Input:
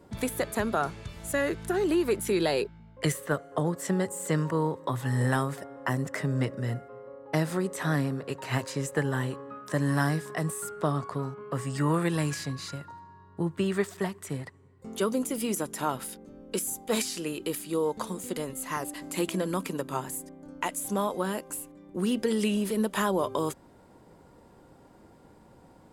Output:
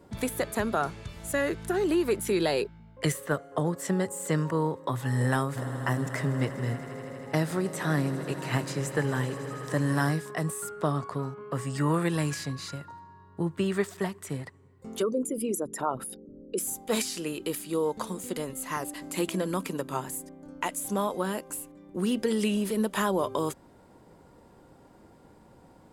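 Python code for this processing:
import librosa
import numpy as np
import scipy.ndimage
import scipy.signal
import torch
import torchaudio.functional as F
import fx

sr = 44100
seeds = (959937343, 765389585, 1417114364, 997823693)

y = fx.echo_swell(x, sr, ms=80, loudest=5, wet_db=-18.0, at=(5.55, 10.12), fade=0.02)
y = fx.envelope_sharpen(y, sr, power=2.0, at=(15.01, 16.58), fade=0.02)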